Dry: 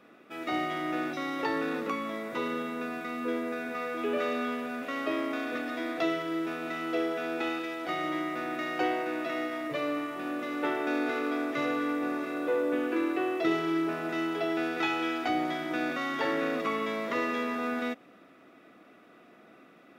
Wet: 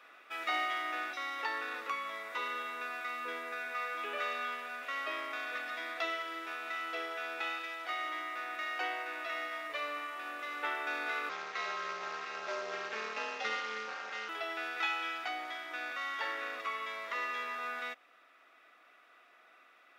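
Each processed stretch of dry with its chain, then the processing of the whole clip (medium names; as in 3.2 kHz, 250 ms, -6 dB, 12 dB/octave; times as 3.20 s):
11.29–14.29 s: CVSD coder 32 kbps + ring modulator 110 Hz
whole clip: high-pass 1.1 kHz 12 dB/octave; treble shelf 5.3 kHz -5.5 dB; gain riding 2 s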